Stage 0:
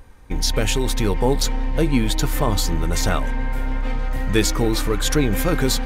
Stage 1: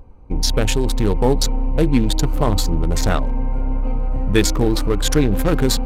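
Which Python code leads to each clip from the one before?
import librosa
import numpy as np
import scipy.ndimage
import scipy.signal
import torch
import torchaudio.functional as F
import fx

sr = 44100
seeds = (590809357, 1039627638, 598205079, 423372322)

y = fx.wiener(x, sr, points=25)
y = F.gain(torch.from_numpy(y), 3.0).numpy()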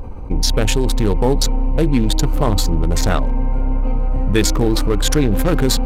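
y = fx.env_flatten(x, sr, amount_pct=50)
y = F.gain(torch.from_numpy(y), -1.0).numpy()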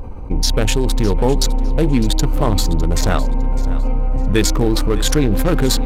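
y = fx.echo_feedback(x, sr, ms=606, feedback_pct=25, wet_db=-16.5)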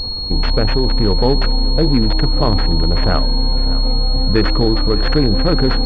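y = fx.pwm(x, sr, carrier_hz=4300.0)
y = F.gain(torch.from_numpy(y), 1.0).numpy()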